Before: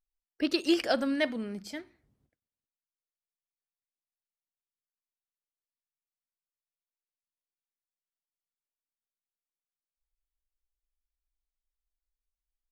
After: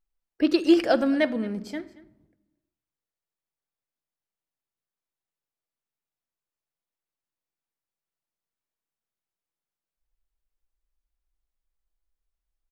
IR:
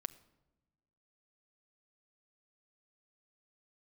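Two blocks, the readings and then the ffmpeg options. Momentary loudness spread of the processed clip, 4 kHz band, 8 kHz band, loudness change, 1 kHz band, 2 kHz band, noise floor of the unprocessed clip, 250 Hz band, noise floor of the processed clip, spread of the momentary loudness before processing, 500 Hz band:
15 LU, 0.0 dB, can't be measured, +6.0 dB, +5.5 dB, +3.0 dB, below −85 dBFS, +7.5 dB, below −85 dBFS, 15 LU, +7.0 dB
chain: -filter_complex "[0:a]highshelf=frequency=2000:gain=-9.5,aecho=1:1:226:0.0944,asplit=2[link_01][link_02];[1:a]atrim=start_sample=2205[link_03];[link_02][link_03]afir=irnorm=-1:irlink=0,volume=11.5dB[link_04];[link_01][link_04]amix=inputs=2:normalize=0,volume=-4.5dB"

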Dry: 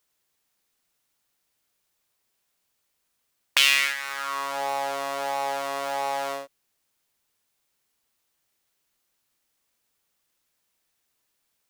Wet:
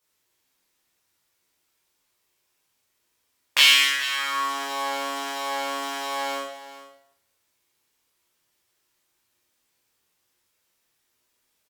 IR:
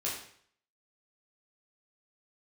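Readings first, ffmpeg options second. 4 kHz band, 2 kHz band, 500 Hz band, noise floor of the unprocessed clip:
+5.5 dB, +2.5 dB, −3.0 dB, −76 dBFS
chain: -filter_complex "[0:a]aecho=1:1:427:0.178[link_01];[1:a]atrim=start_sample=2205,asetrate=38808,aresample=44100[link_02];[link_01][link_02]afir=irnorm=-1:irlink=0,volume=-1.5dB"

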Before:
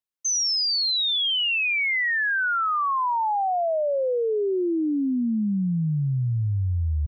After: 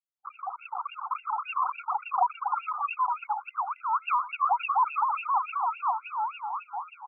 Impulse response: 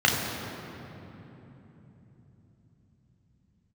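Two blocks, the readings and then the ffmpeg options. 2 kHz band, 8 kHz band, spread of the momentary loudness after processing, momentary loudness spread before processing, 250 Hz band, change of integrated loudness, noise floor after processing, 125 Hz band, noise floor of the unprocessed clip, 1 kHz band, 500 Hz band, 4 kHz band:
−15.0 dB, can't be measured, 10 LU, 5 LU, below −40 dB, −6.5 dB, −60 dBFS, below −40 dB, −24 dBFS, +1.5 dB, −22.0 dB, below −25 dB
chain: -filter_complex "[0:a]dynaudnorm=framelen=440:gausssize=5:maxgain=10.5dB,aresample=16000,acrusher=samples=17:mix=1:aa=0.000001:lfo=1:lforange=10.2:lforate=3.9,aresample=44100,lowshelf=frequency=220:gain=7.5,acrossover=split=500[link_01][link_02];[link_01]aeval=exprs='val(0)*(1-0.5/2+0.5/2*cos(2*PI*5.7*n/s))':channel_layout=same[link_03];[link_02]aeval=exprs='val(0)*(1-0.5/2-0.5/2*cos(2*PI*5.7*n/s))':channel_layout=same[link_04];[link_03][link_04]amix=inputs=2:normalize=0,highpass=59,equalizer=frequency=1700:width=1.2:gain=5.5,acrossover=split=130|980[link_05][link_06][link_07];[link_05]aeval=exprs='sgn(val(0))*max(abs(val(0))-0.0251,0)':channel_layout=same[link_08];[link_08][link_06][link_07]amix=inputs=3:normalize=0,asuperstop=centerf=1800:order=8:qfactor=1.2,aecho=1:1:87:0.158,afftfilt=real='re*between(b*sr/1024,1000*pow(2000/1000,0.5+0.5*sin(2*PI*3.5*pts/sr))/1.41,1000*pow(2000/1000,0.5+0.5*sin(2*PI*3.5*pts/sr))*1.41)':imag='im*between(b*sr/1024,1000*pow(2000/1000,0.5+0.5*sin(2*PI*3.5*pts/sr))/1.41,1000*pow(2000/1000,0.5+0.5*sin(2*PI*3.5*pts/sr))*1.41)':win_size=1024:overlap=0.75,volume=2dB"

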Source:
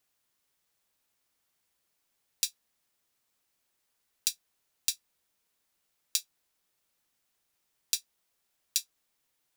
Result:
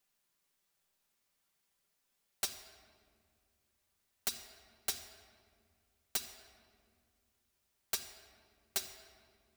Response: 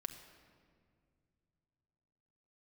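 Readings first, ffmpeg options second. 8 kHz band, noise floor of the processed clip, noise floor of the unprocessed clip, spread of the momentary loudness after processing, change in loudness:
−7.5 dB, −81 dBFS, −78 dBFS, 17 LU, −6.5 dB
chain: -filter_complex "[0:a]aeval=exprs='(mod(10*val(0)+1,2)-1)/10':channel_layout=same,flanger=delay=3.9:depth=9.8:regen=72:speed=0.48:shape=sinusoidal[link_01];[1:a]atrim=start_sample=2205[link_02];[link_01][link_02]afir=irnorm=-1:irlink=0,volume=4.5dB"

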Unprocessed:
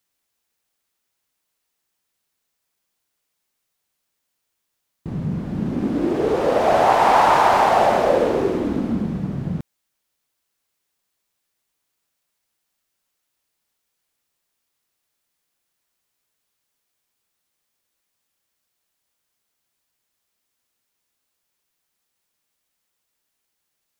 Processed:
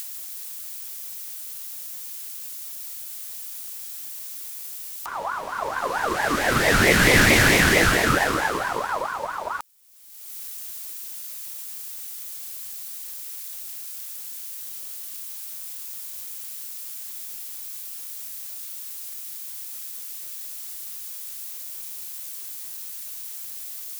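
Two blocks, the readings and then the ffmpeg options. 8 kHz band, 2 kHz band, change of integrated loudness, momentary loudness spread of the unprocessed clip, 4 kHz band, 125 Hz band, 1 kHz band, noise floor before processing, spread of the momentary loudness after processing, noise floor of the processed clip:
+15.0 dB, +9.5 dB, −7.0 dB, 12 LU, +8.5 dB, +0.5 dB, −7.5 dB, −77 dBFS, 15 LU, −36 dBFS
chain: -af "acompressor=mode=upward:threshold=-31dB:ratio=2.5,crystalizer=i=7.5:c=0,aeval=exprs='val(0)*sin(2*PI*1000*n/s+1000*0.3/4.5*sin(2*PI*4.5*n/s))':channel_layout=same,volume=-2dB"

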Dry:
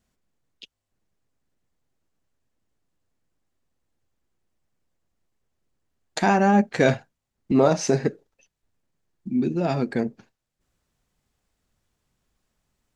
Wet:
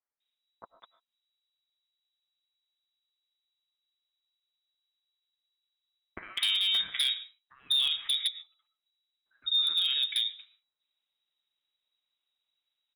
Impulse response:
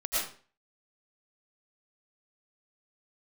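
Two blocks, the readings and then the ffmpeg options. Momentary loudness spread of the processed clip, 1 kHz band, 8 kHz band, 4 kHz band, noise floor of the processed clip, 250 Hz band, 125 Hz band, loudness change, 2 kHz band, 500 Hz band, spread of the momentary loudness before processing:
11 LU, −27.0 dB, −7.5 dB, +16.0 dB, below −85 dBFS, below −35 dB, below −35 dB, −4.5 dB, −9.5 dB, below −35 dB, 11 LU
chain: -filter_complex "[0:a]agate=range=-10dB:threshold=-53dB:ratio=16:detection=peak,acompressor=threshold=-24dB:ratio=8,acrossover=split=2300[link_01][link_02];[link_01]adelay=200[link_03];[link_03][link_02]amix=inputs=2:normalize=0,lowpass=frequency=3300:width_type=q:width=0.5098,lowpass=frequency=3300:width_type=q:width=0.6013,lowpass=frequency=3300:width_type=q:width=0.9,lowpass=frequency=3300:width_type=q:width=2.563,afreqshift=-3900,asplit=2[link_04][link_05];[1:a]atrim=start_sample=2205,afade=type=out:start_time=0.2:duration=0.01,atrim=end_sample=9261,highshelf=frequency=3900:gain=-11.5[link_06];[link_05][link_06]afir=irnorm=-1:irlink=0,volume=-17.5dB[link_07];[link_04][link_07]amix=inputs=2:normalize=0,aeval=exprs='0.1*(abs(mod(val(0)/0.1+3,4)-2)-1)':channel_layout=same"

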